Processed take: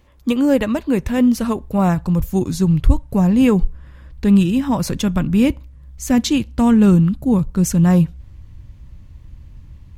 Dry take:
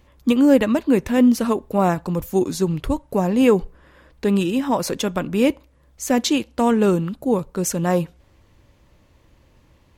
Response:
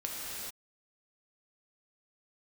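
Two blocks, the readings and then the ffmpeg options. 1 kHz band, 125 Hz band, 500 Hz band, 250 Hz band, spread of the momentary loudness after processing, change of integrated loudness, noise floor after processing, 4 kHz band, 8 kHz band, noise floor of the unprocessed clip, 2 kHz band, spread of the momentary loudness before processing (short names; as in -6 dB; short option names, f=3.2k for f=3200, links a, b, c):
-1.5 dB, +9.5 dB, -3.0 dB, +4.0 dB, 7 LU, +3.0 dB, -42 dBFS, 0.0 dB, 0.0 dB, -56 dBFS, -0.5 dB, 8 LU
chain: -af "asubboost=boost=9.5:cutoff=150"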